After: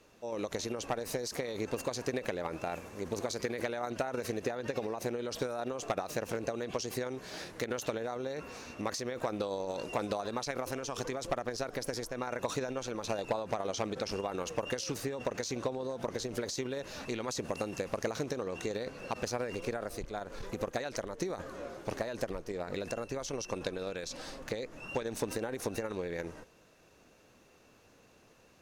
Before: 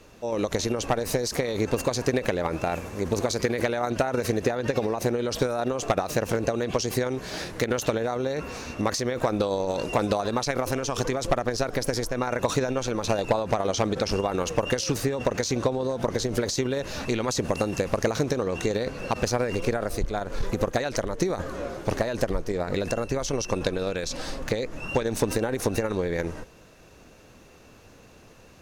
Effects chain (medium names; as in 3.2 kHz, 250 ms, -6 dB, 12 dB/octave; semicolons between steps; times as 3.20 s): rattle on loud lows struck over -26 dBFS, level -37 dBFS; bass shelf 120 Hz -9 dB; trim -9 dB